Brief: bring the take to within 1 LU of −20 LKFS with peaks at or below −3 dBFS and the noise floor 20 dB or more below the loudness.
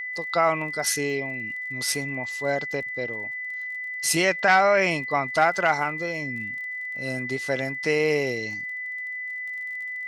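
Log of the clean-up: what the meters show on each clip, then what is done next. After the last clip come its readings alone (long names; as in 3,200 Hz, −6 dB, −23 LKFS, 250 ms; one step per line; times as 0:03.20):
crackle rate 28 per second; interfering tone 2,000 Hz; level of the tone −30 dBFS; integrated loudness −25.0 LKFS; sample peak −7.0 dBFS; target loudness −20.0 LKFS
→ click removal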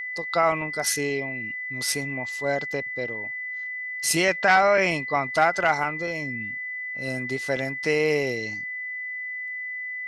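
crackle rate 0.099 per second; interfering tone 2,000 Hz; level of the tone −30 dBFS
→ notch filter 2,000 Hz, Q 30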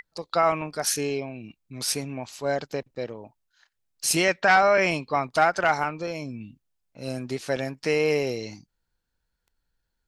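interfering tone none found; integrated loudness −25.0 LKFS; sample peak −7.0 dBFS; target loudness −20.0 LKFS
→ level +5 dB
brickwall limiter −3 dBFS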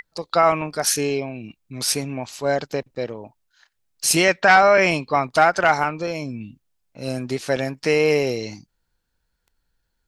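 integrated loudness −20.0 LKFS; sample peak −3.0 dBFS; background noise floor −74 dBFS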